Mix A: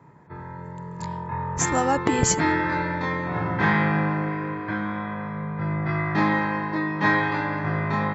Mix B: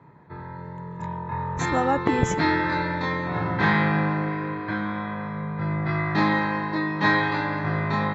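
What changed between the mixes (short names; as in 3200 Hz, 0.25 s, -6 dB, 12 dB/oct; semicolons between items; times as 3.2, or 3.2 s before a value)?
speech: add running mean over 10 samples; master: add bell 4000 Hz +10 dB 0.24 oct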